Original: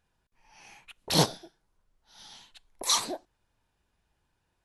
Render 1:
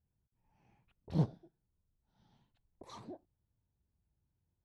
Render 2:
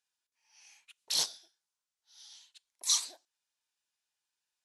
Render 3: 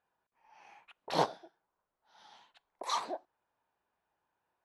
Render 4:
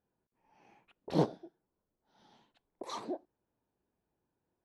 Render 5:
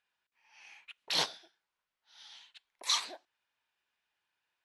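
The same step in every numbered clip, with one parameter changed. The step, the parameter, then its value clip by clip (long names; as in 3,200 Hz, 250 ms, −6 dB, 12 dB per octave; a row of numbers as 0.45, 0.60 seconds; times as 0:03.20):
resonant band-pass, frequency: 100, 6,600, 870, 330, 2,500 Hertz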